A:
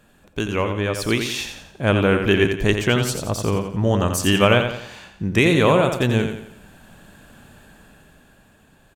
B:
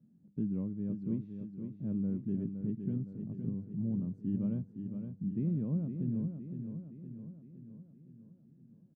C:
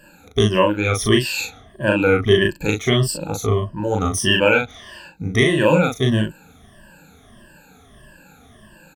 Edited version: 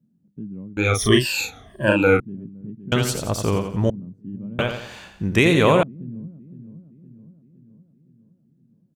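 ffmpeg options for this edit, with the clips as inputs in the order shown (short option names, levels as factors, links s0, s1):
-filter_complex "[0:a]asplit=2[s0][s1];[1:a]asplit=4[s2][s3][s4][s5];[s2]atrim=end=0.772[s6];[2:a]atrim=start=0.768:end=2.202[s7];[s3]atrim=start=2.198:end=2.922[s8];[s0]atrim=start=2.918:end=3.902[s9];[s4]atrim=start=3.898:end=4.592[s10];[s1]atrim=start=4.588:end=5.832[s11];[s5]atrim=start=5.828[s12];[s6][s7]acrossfade=d=0.004:c1=hsin:c2=hsin[s13];[s13][s8]acrossfade=d=0.004:c1=hsin:c2=hsin[s14];[s14][s9]acrossfade=d=0.004:c1=hsin:c2=hsin[s15];[s15][s10]acrossfade=d=0.004:c1=hsin:c2=hsin[s16];[s16][s11]acrossfade=d=0.004:c1=hsin:c2=hsin[s17];[s17][s12]acrossfade=d=0.004:c1=hsin:c2=hsin"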